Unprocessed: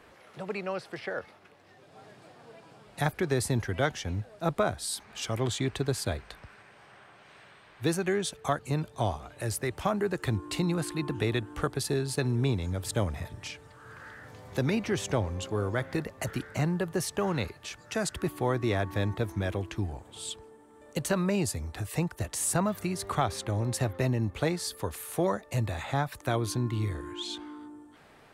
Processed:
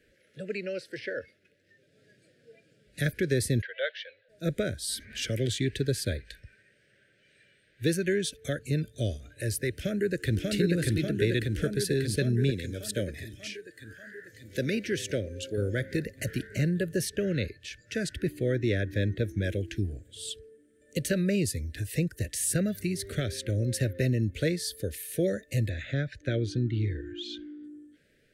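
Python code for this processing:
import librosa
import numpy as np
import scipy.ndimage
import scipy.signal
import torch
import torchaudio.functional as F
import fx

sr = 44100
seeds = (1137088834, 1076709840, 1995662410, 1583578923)

y = fx.ellip_bandpass(x, sr, low_hz=540.0, high_hz=3900.0, order=3, stop_db=40, at=(3.61, 4.28), fade=0.02)
y = fx.band_squash(y, sr, depth_pct=40, at=(4.88, 5.58))
y = fx.echo_throw(y, sr, start_s=9.7, length_s=0.69, ms=590, feedback_pct=75, wet_db=-1.0)
y = fx.low_shelf(y, sr, hz=150.0, db=-11.0, at=(12.5, 15.58))
y = fx.high_shelf(y, sr, hz=7500.0, db=-9.0, at=(17.09, 19.44))
y = fx.air_absorb(y, sr, metres=130.0, at=(25.69, 27.64))
y = scipy.signal.sosfilt(scipy.signal.cheby1(3, 1.0, [560.0, 1600.0], 'bandstop', fs=sr, output='sos'), y)
y = fx.dynamic_eq(y, sr, hz=7300.0, q=3.2, threshold_db=-56.0, ratio=4.0, max_db=-4)
y = fx.noise_reduce_blind(y, sr, reduce_db=10)
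y = F.gain(torch.from_numpy(y), 2.0).numpy()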